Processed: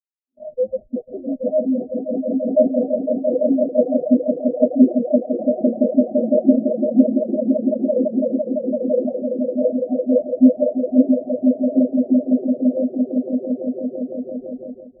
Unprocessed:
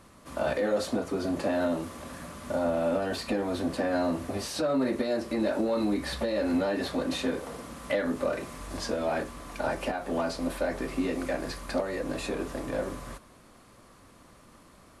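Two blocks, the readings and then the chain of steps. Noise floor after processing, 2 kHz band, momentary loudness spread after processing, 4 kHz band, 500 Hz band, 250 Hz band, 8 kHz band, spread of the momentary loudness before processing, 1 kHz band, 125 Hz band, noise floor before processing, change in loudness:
-48 dBFS, under -40 dB, 10 LU, under -40 dB, +10.5 dB, +14.5 dB, under -35 dB, 9 LU, -5.5 dB, no reading, -55 dBFS, +11.5 dB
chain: comb filter that takes the minimum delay 8.1 ms; high-pass 170 Hz 24 dB/octave; on a send: echo with a slow build-up 169 ms, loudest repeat 8, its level -3 dB; on the sum: reverb removal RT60 1.5 s; in parallel at -11.5 dB: Schmitt trigger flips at -30.5 dBFS; on the sum: level rider gain up to 7 dB; steep low-pass 760 Hz 96 dB/octave; spectral contrast expander 2.5:1; trim +3 dB

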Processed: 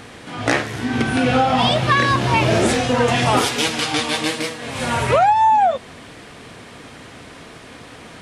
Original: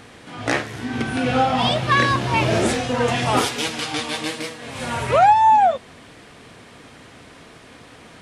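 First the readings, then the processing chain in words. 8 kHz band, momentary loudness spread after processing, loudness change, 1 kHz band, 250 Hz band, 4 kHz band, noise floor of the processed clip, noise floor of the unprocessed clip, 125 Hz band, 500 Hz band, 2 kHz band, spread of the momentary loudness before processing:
+3.5 dB, 10 LU, +2.0 dB, +0.5 dB, +3.5 dB, +3.5 dB, -40 dBFS, -45 dBFS, +3.5 dB, +2.5 dB, +2.5 dB, 14 LU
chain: compression 5:1, threshold -17 dBFS, peak gain reduction 7 dB; trim +5 dB

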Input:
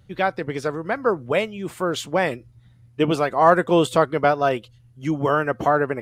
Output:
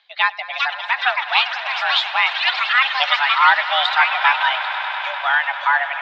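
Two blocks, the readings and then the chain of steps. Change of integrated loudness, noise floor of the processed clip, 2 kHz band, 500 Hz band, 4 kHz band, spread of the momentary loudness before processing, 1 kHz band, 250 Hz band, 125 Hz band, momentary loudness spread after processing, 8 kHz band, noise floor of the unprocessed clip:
+4.5 dB, -33 dBFS, +12.0 dB, -13.5 dB, +15.5 dB, 10 LU, +4.5 dB, under -40 dB, under -40 dB, 8 LU, no reading, -53 dBFS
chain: differentiator; reverb removal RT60 1.7 s; ever faster or slower copies 464 ms, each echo +7 st, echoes 3; on a send: echo with a slow build-up 99 ms, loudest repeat 5, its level -16 dB; on the sum: mistuned SSB +270 Hz 360–3600 Hz; loudness maximiser +21.5 dB; trim -1 dB

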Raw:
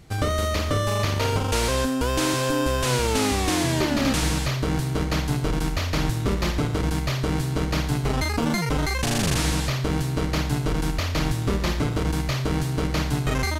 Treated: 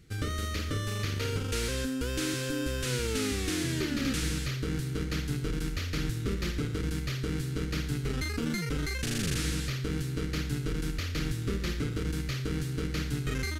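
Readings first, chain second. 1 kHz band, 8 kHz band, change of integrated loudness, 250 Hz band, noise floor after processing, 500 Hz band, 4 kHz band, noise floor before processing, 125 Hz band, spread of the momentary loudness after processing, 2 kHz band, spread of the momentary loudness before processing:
-15.5 dB, -7.5 dB, -8.0 dB, -7.5 dB, -34 dBFS, -10.0 dB, -7.5 dB, -27 dBFS, -7.5 dB, 3 LU, -7.5 dB, 3 LU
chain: high-order bell 800 Hz -14 dB 1.1 oct; trim -7.5 dB

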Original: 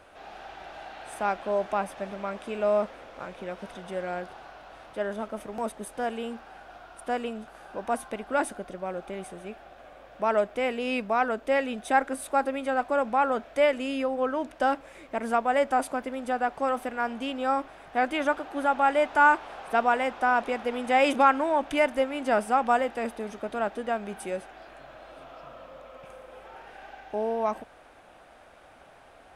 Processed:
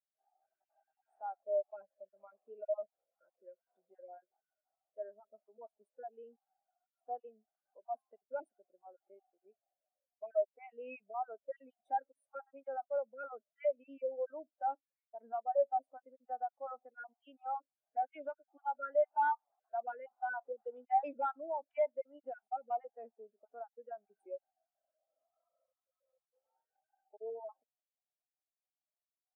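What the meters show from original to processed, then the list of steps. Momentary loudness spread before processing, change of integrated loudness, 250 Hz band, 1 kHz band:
22 LU, -12.0 dB, -28.5 dB, -12.5 dB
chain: random holes in the spectrogram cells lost 25%; high-pass 300 Hz 12 dB/octave; in parallel at -1 dB: compression, threshold -35 dBFS, peak gain reduction 19.5 dB; on the sum: overload inside the chain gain 19 dB; spectral contrast expander 2.5:1; trim -2.5 dB

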